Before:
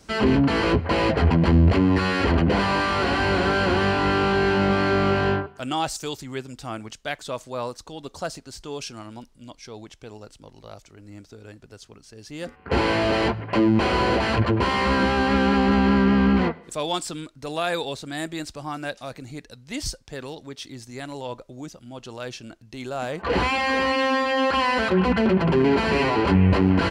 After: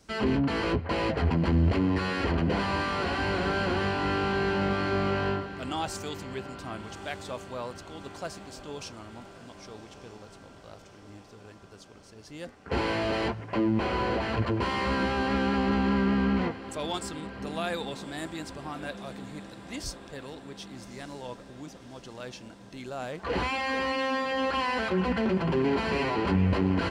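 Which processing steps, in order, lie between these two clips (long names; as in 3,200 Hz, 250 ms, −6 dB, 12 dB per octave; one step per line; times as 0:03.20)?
0:13.49–0:14.38: high-shelf EQ 4,100 Hz −7.5 dB
feedback delay with all-pass diffusion 1,208 ms, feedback 65%, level −15 dB
level −7 dB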